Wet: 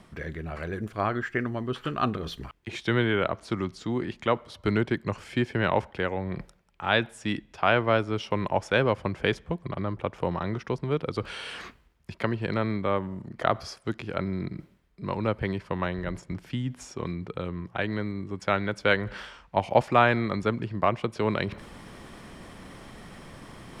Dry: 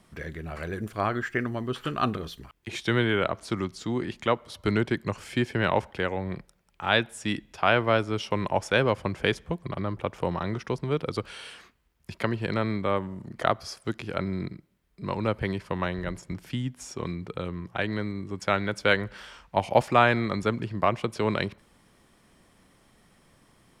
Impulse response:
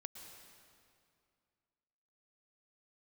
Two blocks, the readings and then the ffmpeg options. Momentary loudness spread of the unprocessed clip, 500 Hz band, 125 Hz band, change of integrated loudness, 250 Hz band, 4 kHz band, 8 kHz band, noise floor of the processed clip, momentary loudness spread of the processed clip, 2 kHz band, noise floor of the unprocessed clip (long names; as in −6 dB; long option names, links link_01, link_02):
12 LU, 0.0 dB, 0.0 dB, −0.5 dB, 0.0 dB, −2.0 dB, −4.5 dB, −60 dBFS, 17 LU, −0.5 dB, −64 dBFS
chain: -af "lowpass=frequency=4000:poles=1,areverse,acompressor=mode=upward:threshold=-30dB:ratio=2.5,areverse"